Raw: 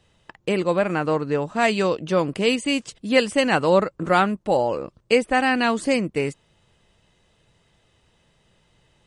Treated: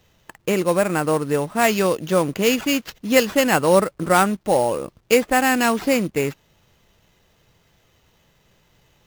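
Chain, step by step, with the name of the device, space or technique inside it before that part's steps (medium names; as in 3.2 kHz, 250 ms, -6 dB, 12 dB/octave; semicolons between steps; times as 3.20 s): early companding sampler (sample-rate reducer 9.5 kHz, jitter 0%; companded quantiser 6-bit); trim +2 dB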